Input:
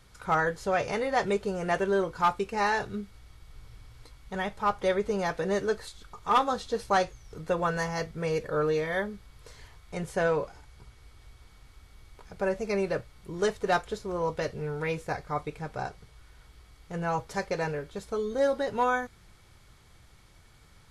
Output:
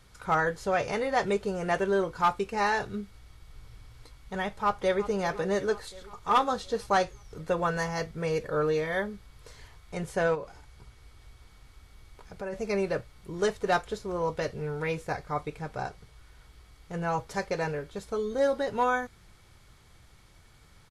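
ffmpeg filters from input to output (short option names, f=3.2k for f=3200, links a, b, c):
-filter_complex "[0:a]asplit=2[a][b];[b]afade=t=in:st=4.57:d=0.01,afade=t=out:st=5.05:d=0.01,aecho=0:1:360|720|1080|1440|1800|2160|2520:0.177828|0.115588|0.0751323|0.048836|0.0317434|0.0206332|0.0134116[c];[a][c]amix=inputs=2:normalize=0,asplit=3[d][e][f];[d]afade=t=out:st=10.34:d=0.02[g];[e]acompressor=threshold=-38dB:ratio=2:attack=3.2:release=140:knee=1:detection=peak,afade=t=in:st=10.34:d=0.02,afade=t=out:st=12.52:d=0.02[h];[f]afade=t=in:st=12.52:d=0.02[i];[g][h][i]amix=inputs=3:normalize=0"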